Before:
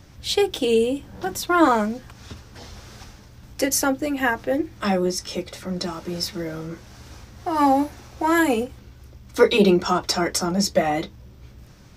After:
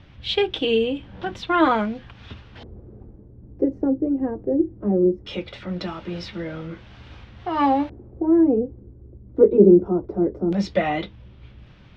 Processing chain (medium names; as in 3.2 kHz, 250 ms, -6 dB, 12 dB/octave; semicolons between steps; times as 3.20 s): tone controls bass +2 dB, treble -7 dB; LFO low-pass square 0.19 Hz 390–3200 Hz; trim -2 dB